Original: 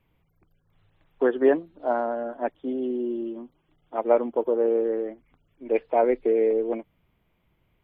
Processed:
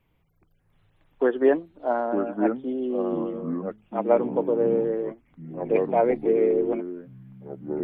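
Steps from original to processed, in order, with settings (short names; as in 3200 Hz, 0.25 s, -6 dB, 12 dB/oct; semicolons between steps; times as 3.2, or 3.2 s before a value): echoes that change speed 0.592 s, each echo -4 st, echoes 3, each echo -6 dB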